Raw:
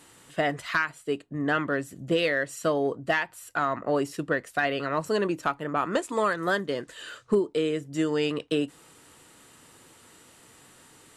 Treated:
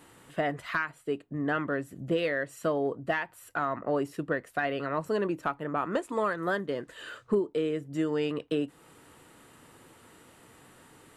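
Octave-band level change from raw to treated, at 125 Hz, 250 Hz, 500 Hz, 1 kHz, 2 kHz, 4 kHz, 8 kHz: -2.5, -2.5, -3.0, -3.5, -5.0, -8.0, -9.5 dB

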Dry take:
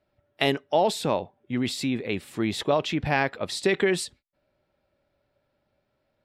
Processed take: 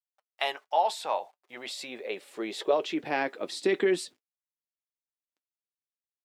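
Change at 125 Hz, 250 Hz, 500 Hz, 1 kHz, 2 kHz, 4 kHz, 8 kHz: -18.5, -7.5, -3.5, -1.5, -5.5, -5.5, -6.5 dB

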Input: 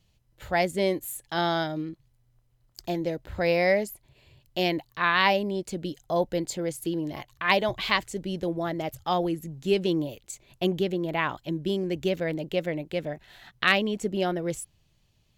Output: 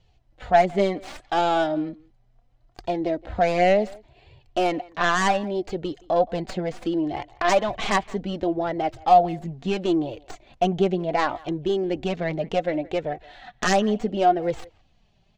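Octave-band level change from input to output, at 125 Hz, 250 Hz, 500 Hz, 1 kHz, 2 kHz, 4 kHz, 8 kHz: +1.5, +3.0, +4.5, +7.5, -1.0, -2.0, +1.5 dB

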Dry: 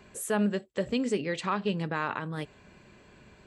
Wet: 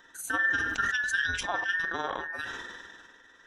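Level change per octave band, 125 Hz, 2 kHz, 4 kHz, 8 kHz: -13.0, +12.0, +3.5, +1.0 dB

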